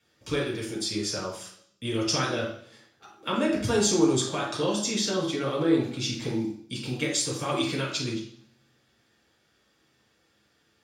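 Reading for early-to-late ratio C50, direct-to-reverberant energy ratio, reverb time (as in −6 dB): 4.0 dB, −5.0 dB, 0.60 s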